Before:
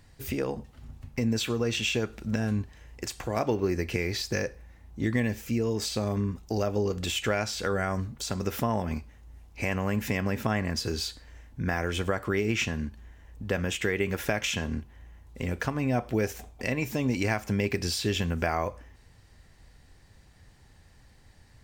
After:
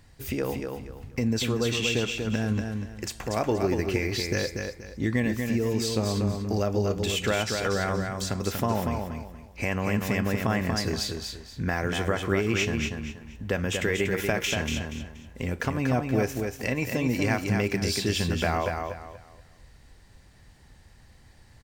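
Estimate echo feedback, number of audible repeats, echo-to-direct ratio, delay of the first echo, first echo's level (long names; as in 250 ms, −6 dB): 29%, 3, −4.5 dB, 238 ms, −5.0 dB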